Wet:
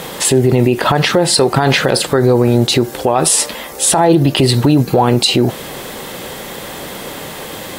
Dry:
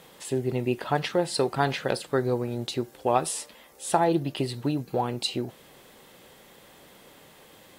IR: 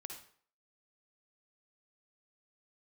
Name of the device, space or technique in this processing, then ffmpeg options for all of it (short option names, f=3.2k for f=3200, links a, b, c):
mastering chain: -af "equalizer=f=2.7k:t=o:w=0.77:g=-1.5,acompressor=threshold=-29dB:ratio=2,alimiter=level_in=26dB:limit=-1dB:release=50:level=0:latency=1,volume=-1dB"